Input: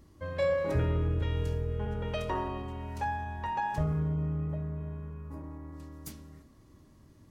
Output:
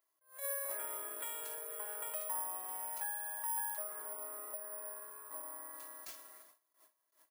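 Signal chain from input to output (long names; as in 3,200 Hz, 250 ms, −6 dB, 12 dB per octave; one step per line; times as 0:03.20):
noise gate with hold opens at −46 dBFS
high-pass filter 640 Hz 24 dB per octave
high-shelf EQ 6,600 Hz −10.5 dB
comb filter 3 ms, depth 58%
downward compressor 3 to 1, threshold −50 dBFS, peak gain reduction 15 dB
bad sample-rate conversion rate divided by 4×, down none, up zero stuff
level that may rise only so fast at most 170 dB per second
level +3 dB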